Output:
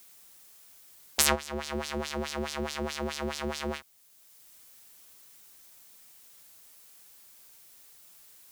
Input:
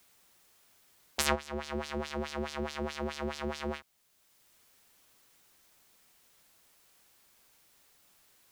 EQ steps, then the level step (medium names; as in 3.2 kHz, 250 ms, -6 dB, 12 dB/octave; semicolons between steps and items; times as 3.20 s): treble shelf 5 kHz +10 dB; +2.0 dB